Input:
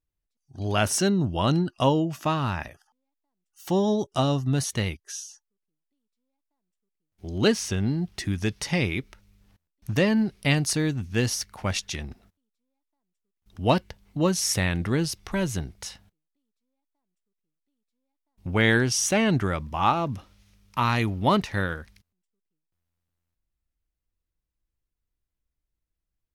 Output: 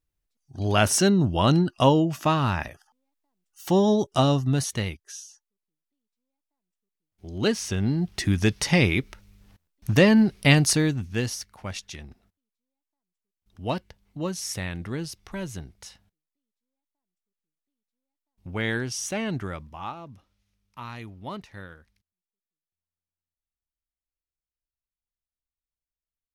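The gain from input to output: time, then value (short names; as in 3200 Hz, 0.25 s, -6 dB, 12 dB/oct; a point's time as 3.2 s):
4.28 s +3 dB
5.15 s -4 dB
7.31 s -4 dB
8.32 s +5 dB
10.66 s +5 dB
11.52 s -7 dB
19.56 s -7 dB
19.96 s -15 dB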